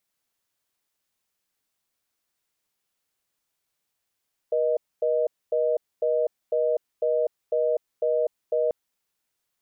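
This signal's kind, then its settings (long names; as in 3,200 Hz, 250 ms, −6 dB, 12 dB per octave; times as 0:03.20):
call progress tone reorder tone, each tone −23 dBFS 4.19 s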